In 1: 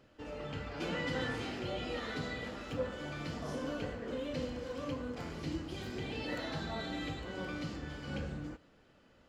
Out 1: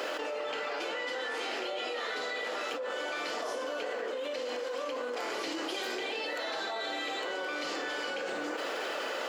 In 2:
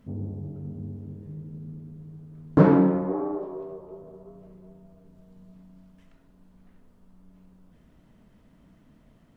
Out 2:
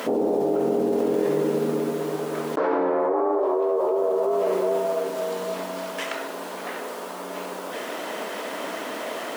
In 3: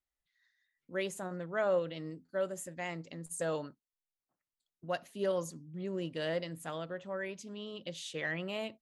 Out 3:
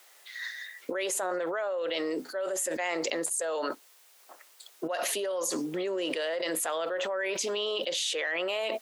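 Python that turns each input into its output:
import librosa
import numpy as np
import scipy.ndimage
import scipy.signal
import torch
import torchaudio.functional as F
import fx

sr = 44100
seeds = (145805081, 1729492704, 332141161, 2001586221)

y = scipy.signal.sosfilt(scipy.signal.butter(4, 420.0, 'highpass', fs=sr, output='sos'), x)
y = fx.env_flatten(y, sr, amount_pct=100)
y = y * librosa.db_to_amplitude(-3.0)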